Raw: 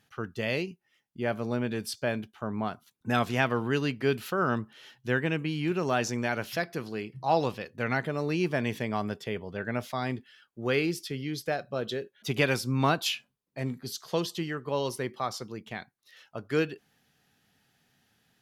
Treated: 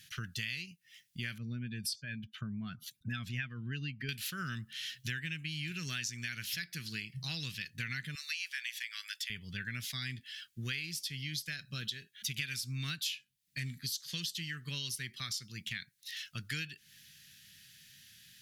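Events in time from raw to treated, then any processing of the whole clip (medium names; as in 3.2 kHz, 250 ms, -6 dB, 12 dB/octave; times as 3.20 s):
1.38–4.09 s: spectral contrast enhancement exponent 1.6
8.15–9.30 s: high-pass 1.3 kHz 24 dB/octave
whole clip: FFT filter 160 Hz 0 dB, 550 Hz -28 dB, 860 Hz -30 dB, 1.7 kHz +3 dB, 3.7 kHz +10 dB; compression 5:1, threshold -43 dBFS; trim +5.5 dB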